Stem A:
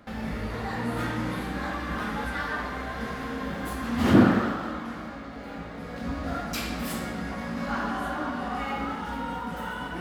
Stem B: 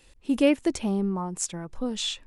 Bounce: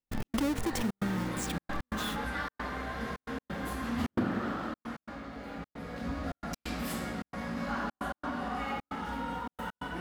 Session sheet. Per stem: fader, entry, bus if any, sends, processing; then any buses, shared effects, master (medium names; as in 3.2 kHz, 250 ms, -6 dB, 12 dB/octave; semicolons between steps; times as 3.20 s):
-3.5 dB, 0.00 s, no send, none
-12.5 dB, 0.00 s, no send, square wave that keeps the level; peaking EQ 210 Hz +8.5 dB 1.5 oct; swell ahead of each attack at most 52 dB/s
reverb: none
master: trance gate ".x.xxxxx.xxxxx" 133 bpm -60 dB; compression 3:1, threshold -29 dBFS, peak gain reduction 10 dB